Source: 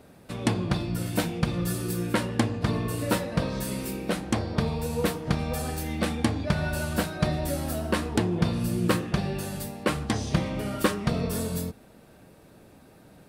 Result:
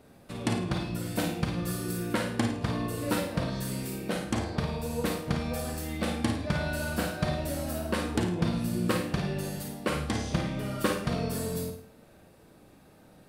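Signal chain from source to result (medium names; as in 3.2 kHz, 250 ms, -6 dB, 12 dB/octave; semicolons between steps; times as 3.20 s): flutter echo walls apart 9.3 m, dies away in 0.42 s; Schroeder reverb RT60 0.34 s, combs from 30 ms, DRR 5.5 dB; trim -4.5 dB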